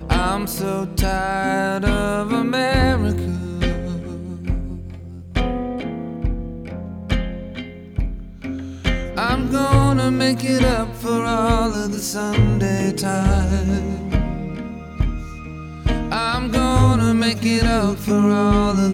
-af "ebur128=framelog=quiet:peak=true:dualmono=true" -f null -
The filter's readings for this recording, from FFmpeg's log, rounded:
Integrated loudness:
  I:         -17.2 LUFS
  Threshold: -27.7 LUFS
Loudness range:
  LRA:         8.5 LU
  Threshold: -38.1 LUFS
  LRA low:   -24.0 LUFS
  LRA high:  -15.5 LUFS
True peak:
  Peak:       -3.7 dBFS